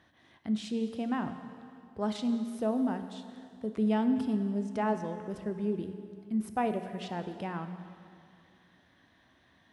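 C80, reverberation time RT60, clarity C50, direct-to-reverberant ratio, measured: 10.0 dB, 2.4 s, 9.0 dB, 7.5 dB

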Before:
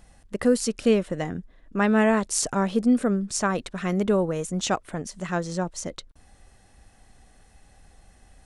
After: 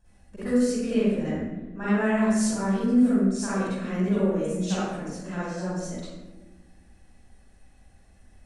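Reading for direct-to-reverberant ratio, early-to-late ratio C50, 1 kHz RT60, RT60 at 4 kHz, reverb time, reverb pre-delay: -12.5 dB, -6.5 dB, 0.95 s, 0.70 s, 1.2 s, 37 ms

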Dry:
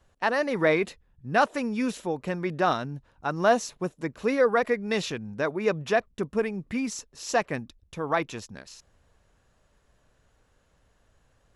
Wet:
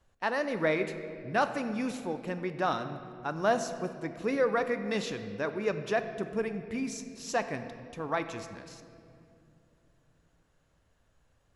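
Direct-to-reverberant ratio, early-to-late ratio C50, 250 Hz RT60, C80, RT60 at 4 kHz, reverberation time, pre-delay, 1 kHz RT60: 8.5 dB, 10.0 dB, 4.0 s, 10.5 dB, 1.6 s, 2.6 s, 3 ms, 2.2 s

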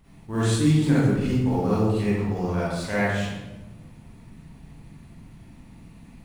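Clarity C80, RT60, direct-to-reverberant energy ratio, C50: 0.5 dB, 1.1 s, -10.5 dB, -5.5 dB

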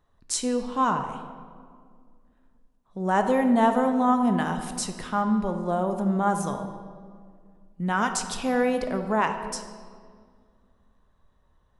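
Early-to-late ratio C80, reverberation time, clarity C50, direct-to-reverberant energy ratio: 9.5 dB, 2.0 s, 8.0 dB, 6.0 dB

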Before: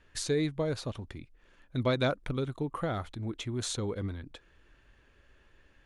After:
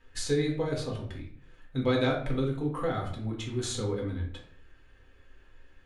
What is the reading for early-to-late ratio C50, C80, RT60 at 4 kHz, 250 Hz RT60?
6.5 dB, 10.5 dB, 0.40 s, 0.70 s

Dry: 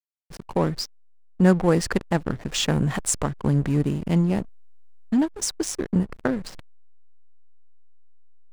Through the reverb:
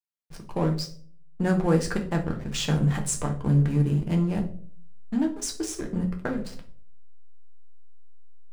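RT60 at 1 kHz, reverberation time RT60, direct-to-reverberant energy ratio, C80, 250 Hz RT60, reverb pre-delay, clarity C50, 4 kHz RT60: 0.40 s, 0.50 s, 1.5 dB, 16.0 dB, 0.65 s, 6 ms, 11.0 dB, 0.35 s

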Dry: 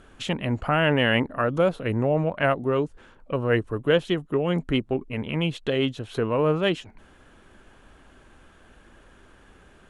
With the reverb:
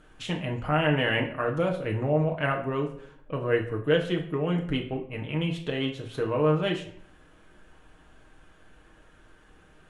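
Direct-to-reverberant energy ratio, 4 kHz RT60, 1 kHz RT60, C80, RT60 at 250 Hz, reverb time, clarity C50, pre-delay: 1.0 dB, 0.45 s, 0.55 s, 13.5 dB, 0.80 s, 0.60 s, 9.5 dB, 6 ms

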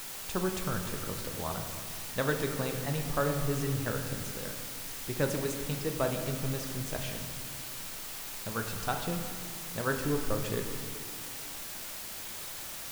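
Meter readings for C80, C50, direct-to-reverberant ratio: 7.5 dB, 6.0 dB, 4.0 dB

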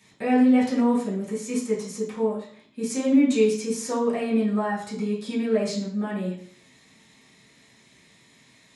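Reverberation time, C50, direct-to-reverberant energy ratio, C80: 0.55 s, 6.0 dB, -8.5 dB, 10.5 dB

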